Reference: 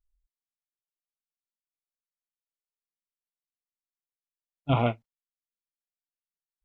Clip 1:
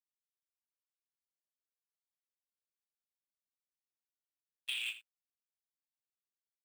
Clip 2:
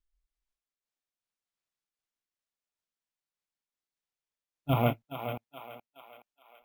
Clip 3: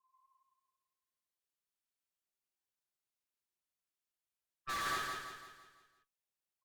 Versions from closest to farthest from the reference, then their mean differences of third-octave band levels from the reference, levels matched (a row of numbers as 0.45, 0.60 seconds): 2, 3, 1; 4.0, 17.0, 22.5 decibels